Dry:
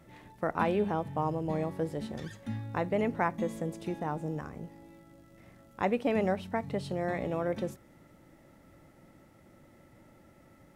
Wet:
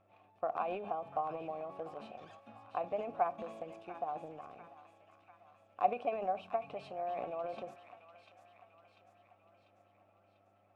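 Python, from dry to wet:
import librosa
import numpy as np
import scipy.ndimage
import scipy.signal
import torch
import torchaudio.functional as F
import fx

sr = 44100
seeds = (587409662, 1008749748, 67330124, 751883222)

p1 = fx.vowel_filter(x, sr, vowel='a')
p2 = fx.transient(p1, sr, attack_db=6, sustain_db=10)
p3 = fx.dmg_buzz(p2, sr, base_hz=100.0, harmonics=23, level_db=-76.0, tilt_db=-6, odd_only=False)
y = p3 + fx.echo_wet_highpass(p3, sr, ms=694, feedback_pct=55, hz=1500.0, wet_db=-7.5, dry=0)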